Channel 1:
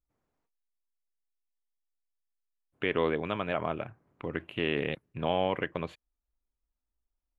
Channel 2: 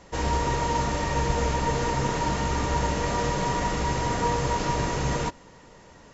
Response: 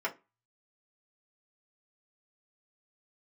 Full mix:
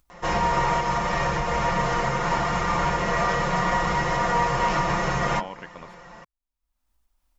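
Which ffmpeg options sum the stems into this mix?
-filter_complex "[0:a]volume=0.422[s0];[1:a]aemphasis=mode=reproduction:type=50kf,aecho=1:1:5.7:0.91,alimiter=limit=0.15:level=0:latency=1:release=234,adelay=100,volume=1,asplit=2[s1][s2];[s2]volume=0.631[s3];[2:a]atrim=start_sample=2205[s4];[s3][s4]afir=irnorm=-1:irlink=0[s5];[s0][s1][s5]amix=inputs=3:normalize=0,equalizer=f=100:t=o:w=0.67:g=-6,equalizer=f=400:t=o:w=0.67:g=-7,equalizer=f=1000:t=o:w=0.67:g=4,acompressor=mode=upward:threshold=0.00355:ratio=2.5"

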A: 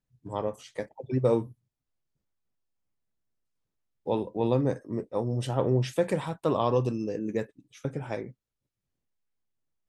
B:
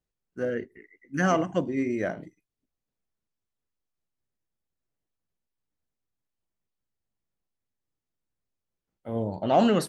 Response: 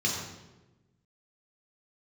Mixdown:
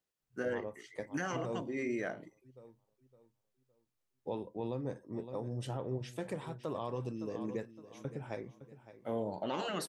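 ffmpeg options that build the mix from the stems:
-filter_complex "[0:a]adelay=200,volume=0.447,asplit=2[s0][s1];[s1]volume=0.168[s2];[1:a]highpass=f=380:p=1,volume=1.12[s3];[s2]aecho=0:1:562|1124|1686|2248|2810:1|0.32|0.102|0.0328|0.0105[s4];[s0][s3][s4]amix=inputs=3:normalize=0,afftfilt=real='re*lt(hypot(re,im),0.398)':imag='im*lt(hypot(re,im),0.398)':win_size=1024:overlap=0.75,alimiter=level_in=1.33:limit=0.0631:level=0:latency=1:release=484,volume=0.75"

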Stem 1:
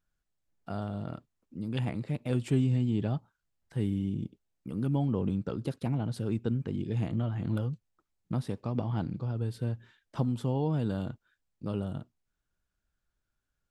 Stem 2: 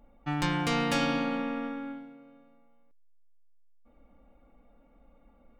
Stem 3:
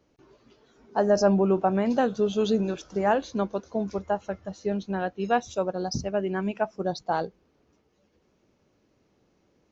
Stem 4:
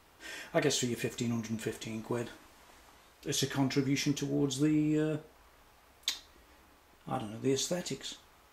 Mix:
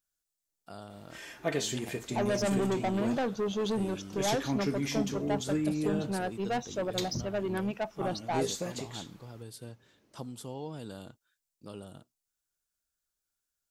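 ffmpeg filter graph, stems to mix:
-filter_complex "[0:a]bass=f=250:g=-9,treble=f=4000:g=15,volume=0.447[s0];[2:a]highpass=60,asoftclip=type=tanh:threshold=0.0562,adelay=1200,volume=0.841[s1];[3:a]adelay=900,volume=0.794[s2];[s0][s1][s2]amix=inputs=3:normalize=0"

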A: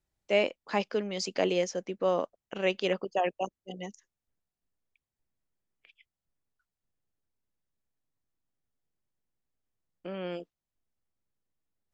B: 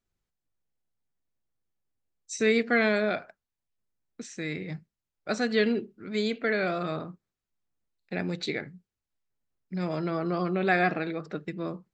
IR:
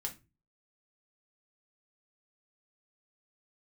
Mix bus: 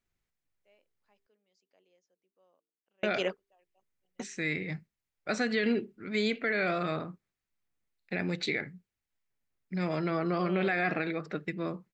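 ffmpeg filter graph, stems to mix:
-filter_complex "[0:a]lowshelf=f=200:g=-9.5,bandreject=f=56.61:t=h:w=4,bandreject=f=113.22:t=h:w=4,bandreject=f=169.83:t=h:w=4,bandreject=f=226.44:t=h:w=4,bandreject=f=283.05:t=h:w=4,bandreject=f=339.66:t=h:w=4,bandreject=f=396.27:t=h:w=4,bandreject=f=452.88:t=h:w=4,adelay=350,volume=0.891[s0];[1:a]equalizer=f=2100:t=o:w=0.8:g=6.5,volume=0.891,asplit=3[s1][s2][s3];[s1]atrim=end=1.27,asetpts=PTS-STARTPTS,afade=t=out:st=1.266:d=0.004:c=hsin[s4];[s2]atrim=start=1.27:end=3.03,asetpts=PTS-STARTPTS,volume=0[s5];[s3]atrim=start=3.03,asetpts=PTS-STARTPTS,afade=t=in:d=0.004:c=hsin[s6];[s4][s5][s6]concat=n=3:v=0:a=1,asplit=2[s7][s8];[s8]apad=whole_len=541742[s9];[s0][s9]sidechaingate=range=0.01:threshold=0.00447:ratio=16:detection=peak[s10];[s10][s7]amix=inputs=2:normalize=0,alimiter=limit=0.112:level=0:latency=1:release=26"

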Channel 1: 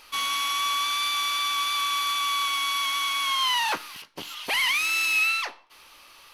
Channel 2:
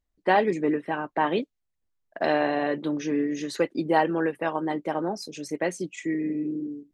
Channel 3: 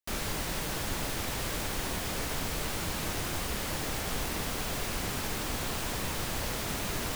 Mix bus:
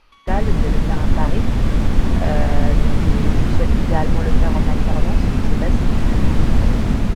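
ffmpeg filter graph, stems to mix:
-filter_complex "[0:a]alimiter=level_in=1.12:limit=0.0631:level=0:latency=1,volume=0.891,acompressor=threshold=0.00891:ratio=6,volume=0.531[s0];[1:a]equalizer=f=310:t=o:w=0.62:g=-14.5,volume=0.596[s1];[2:a]equalizer=f=230:w=2.7:g=8.5,adelay=200,volume=1.41[s2];[s0][s1][s2]amix=inputs=3:normalize=0,aemphasis=mode=reproduction:type=riaa,dynaudnorm=f=130:g=7:m=2.11"

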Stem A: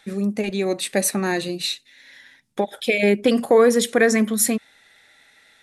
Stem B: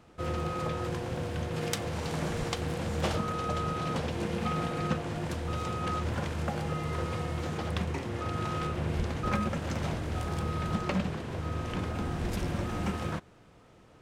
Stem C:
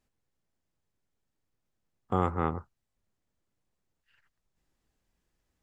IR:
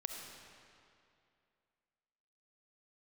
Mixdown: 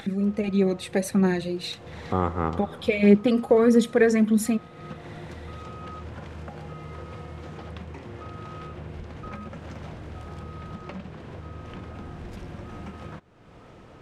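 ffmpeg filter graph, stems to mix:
-filter_complex "[0:a]equalizer=f=120:t=o:w=2.8:g=10.5,aphaser=in_gain=1:out_gain=1:delay=2.6:decay=0.42:speed=1.6:type=triangular,volume=0.447[s0];[1:a]volume=0.211[s1];[2:a]volume=1,asplit=2[s2][s3];[s3]volume=0.501[s4];[3:a]atrim=start_sample=2205[s5];[s4][s5]afir=irnorm=-1:irlink=0[s6];[s0][s1][s2][s6]amix=inputs=4:normalize=0,highshelf=f=6100:g=-11.5,acompressor=mode=upward:threshold=0.0355:ratio=2.5"

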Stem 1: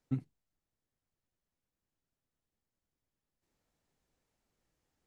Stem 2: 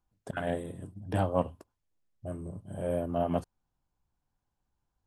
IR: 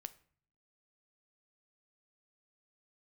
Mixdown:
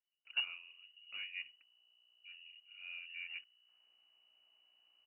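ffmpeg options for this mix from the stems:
-filter_complex "[0:a]equalizer=f=2300:t=o:w=0.74:g=13.5,aeval=exprs='val(0)+0.000447*(sin(2*PI*60*n/s)+sin(2*PI*2*60*n/s)/2+sin(2*PI*3*60*n/s)/3+sin(2*PI*4*60*n/s)/4+sin(2*PI*5*60*n/s)/5)':c=same,acrusher=samples=9:mix=1:aa=0.000001:lfo=1:lforange=9:lforate=0.41,adelay=250,volume=0.708[s0];[1:a]volume=0.133[s1];[s0][s1]amix=inputs=2:normalize=0,lowpass=f=2600:t=q:w=0.5098,lowpass=f=2600:t=q:w=0.6013,lowpass=f=2600:t=q:w=0.9,lowpass=f=2600:t=q:w=2.563,afreqshift=-3000"

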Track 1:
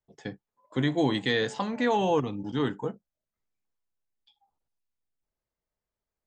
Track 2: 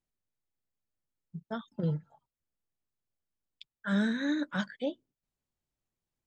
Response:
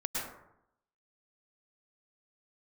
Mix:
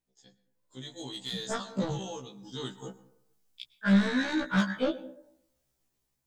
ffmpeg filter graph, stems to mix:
-filter_complex "[0:a]aexciter=amount=7.4:drive=7.2:freq=3300,aeval=exprs='clip(val(0),-1,0.224)':c=same,volume=0.178,afade=t=in:st=2.2:d=0.62:silence=0.375837,asplit=2[s0][s1];[s1]volume=0.1[s2];[1:a]volume=1.41,asplit=2[s3][s4];[s4]volume=0.0891[s5];[2:a]atrim=start_sample=2205[s6];[s2][s5]amix=inputs=2:normalize=0[s7];[s7][s6]afir=irnorm=-1:irlink=0[s8];[s0][s3][s8]amix=inputs=3:normalize=0,asoftclip=type=tanh:threshold=0.0473,dynaudnorm=f=300:g=5:m=2.51,afftfilt=real='re*1.73*eq(mod(b,3),0)':imag='im*1.73*eq(mod(b,3),0)':win_size=2048:overlap=0.75"

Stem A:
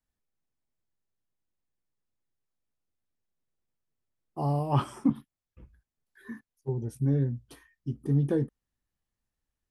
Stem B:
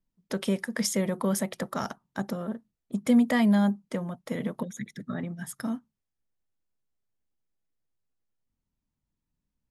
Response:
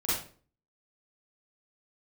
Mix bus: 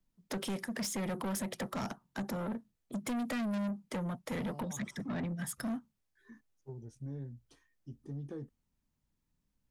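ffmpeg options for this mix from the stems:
-filter_complex "[0:a]lowpass=f=6600:t=q:w=2.5,alimiter=limit=0.119:level=0:latency=1:release=221,volume=0.2[s0];[1:a]volume=1.33,asplit=2[s1][s2];[s2]apad=whole_len=427850[s3];[s0][s3]sidechaincompress=threshold=0.0355:ratio=8:attack=22:release=980[s4];[s4][s1]amix=inputs=2:normalize=0,acrossover=split=220|520[s5][s6][s7];[s5]acompressor=threshold=0.0282:ratio=4[s8];[s6]acompressor=threshold=0.0282:ratio=4[s9];[s7]acompressor=threshold=0.0251:ratio=4[s10];[s8][s9][s10]amix=inputs=3:normalize=0,asoftclip=type=tanh:threshold=0.0237"

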